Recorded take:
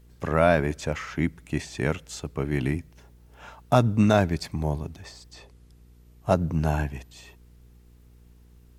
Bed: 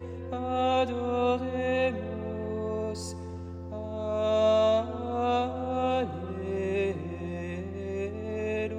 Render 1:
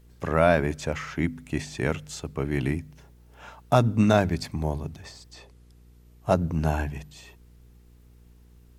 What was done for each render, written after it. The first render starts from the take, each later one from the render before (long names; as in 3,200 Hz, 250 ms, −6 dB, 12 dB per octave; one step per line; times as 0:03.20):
hum removal 50 Hz, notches 5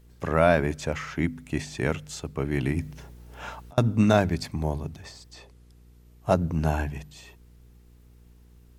0:02.72–0:03.78: compressor whose output falls as the input rises −30 dBFS, ratio −0.5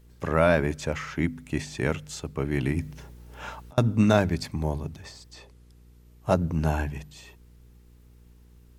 notch filter 700 Hz, Q 14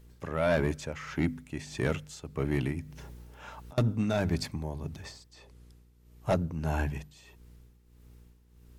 amplitude tremolo 1.6 Hz, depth 64%
soft clipping −18.5 dBFS, distortion −12 dB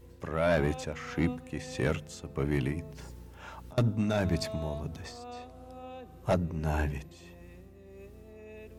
mix in bed −17.5 dB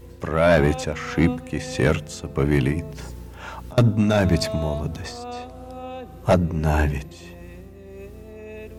level +10 dB